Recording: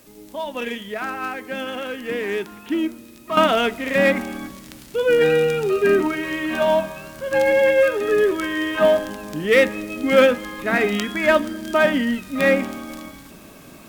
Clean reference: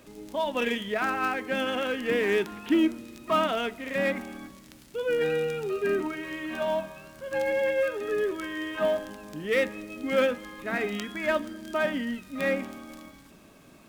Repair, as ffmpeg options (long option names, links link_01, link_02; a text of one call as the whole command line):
ffmpeg -i in.wav -af "agate=range=-21dB:threshold=-34dB,asetnsamples=nb_out_samples=441:pad=0,asendcmd='3.37 volume volume -10dB',volume=0dB" out.wav